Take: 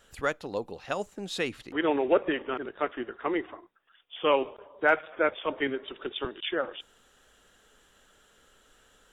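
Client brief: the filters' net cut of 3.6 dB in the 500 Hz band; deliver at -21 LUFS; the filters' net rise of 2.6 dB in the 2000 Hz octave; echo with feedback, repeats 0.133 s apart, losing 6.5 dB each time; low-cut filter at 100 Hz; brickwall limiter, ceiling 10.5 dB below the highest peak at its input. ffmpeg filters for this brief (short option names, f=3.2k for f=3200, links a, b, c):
-af "highpass=100,equalizer=f=500:t=o:g=-4.5,equalizer=f=2k:t=o:g=4,alimiter=limit=-18.5dB:level=0:latency=1,aecho=1:1:133|266|399|532|665|798:0.473|0.222|0.105|0.0491|0.0231|0.0109,volume=11.5dB"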